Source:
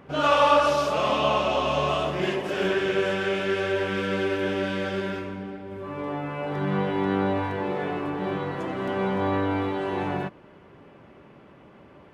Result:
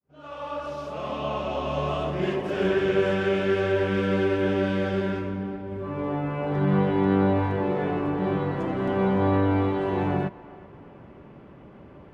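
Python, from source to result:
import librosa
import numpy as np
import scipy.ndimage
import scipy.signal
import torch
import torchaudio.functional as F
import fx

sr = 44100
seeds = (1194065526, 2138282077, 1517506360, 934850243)

p1 = fx.fade_in_head(x, sr, length_s=3.08)
p2 = fx.tilt_eq(p1, sr, slope=-2.0)
y = p2 + fx.echo_banded(p2, sr, ms=381, feedback_pct=47, hz=1100.0, wet_db=-18.0, dry=0)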